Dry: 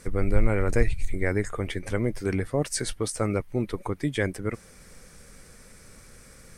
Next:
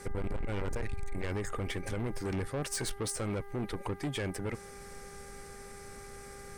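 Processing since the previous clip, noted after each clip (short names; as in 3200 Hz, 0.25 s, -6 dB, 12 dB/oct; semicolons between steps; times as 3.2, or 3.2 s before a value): limiter -18 dBFS, peak gain reduction 10.5 dB; soft clip -30 dBFS, distortion -8 dB; buzz 400 Hz, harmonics 5, -51 dBFS -5 dB/oct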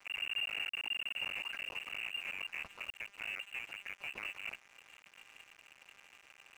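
cycle switcher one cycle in 2, muted; inverted band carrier 2800 Hz; crossover distortion -50 dBFS; gain -4.5 dB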